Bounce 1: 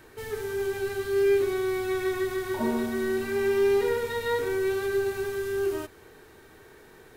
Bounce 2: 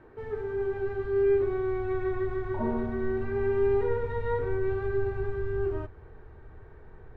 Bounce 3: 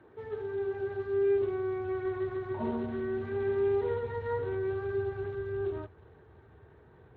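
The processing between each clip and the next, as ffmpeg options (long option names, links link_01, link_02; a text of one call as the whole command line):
ffmpeg -i in.wav -af "lowpass=1200,asubboost=boost=7.5:cutoff=95" out.wav
ffmpeg -i in.wav -af "volume=-3.5dB" -ar 16000 -c:a libspeex -b:a 21k out.spx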